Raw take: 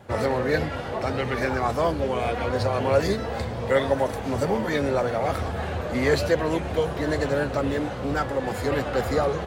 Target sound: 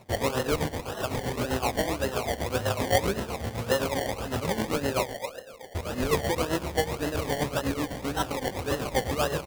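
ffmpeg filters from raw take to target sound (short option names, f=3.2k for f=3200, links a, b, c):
-filter_complex "[0:a]asettb=1/sr,asplit=3[a][b][c];[a]atrim=end=5.034[d];[b]atrim=start=5.03:end=5.75,asetpts=PTS-STARTPTS,afade=t=in:d=0.004:c=qsin,afade=t=out:st=0.716:d=0.004:c=qsin,asplit=3[e][f][g];[e]bandpass=f=530:t=q:w=8,volume=0dB[h];[f]bandpass=f=1.84k:t=q:w=8,volume=-6dB[i];[g]bandpass=f=2.48k:t=q:w=8,volume=-9dB[j];[h][i][j]amix=inputs=3:normalize=0[k];[c]atrim=start=5.746[l];[d][k]acrossfade=d=0.004:c1=hsin:c2=qsin[m];[m][l]acrossfade=d=0.004:c1=qsin:c2=hsin,asplit=2[n][o];[o]aecho=0:1:69|138|207|276|345|414|483:0.335|0.201|0.121|0.0724|0.0434|0.026|0.0156[p];[n][p]amix=inputs=2:normalize=0,acrusher=samples=27:mix=1:aa=0.000001:lfo=1:lforange=16.2:lforate=1.8,tremolo=f=7.8:d=0.71,volume=-1.5dB"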